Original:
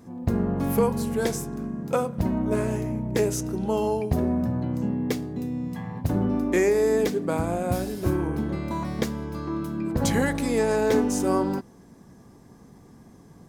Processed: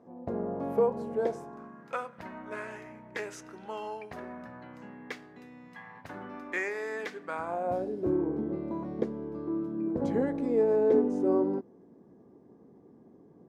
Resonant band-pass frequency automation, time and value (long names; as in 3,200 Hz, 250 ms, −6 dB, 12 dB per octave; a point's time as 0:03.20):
resonant band-pass, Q 1.6
0:01.26 580 Hz
0:01.92 1,700 Hz
0:07.28 1,700 Hz
0:07.93 390 Hz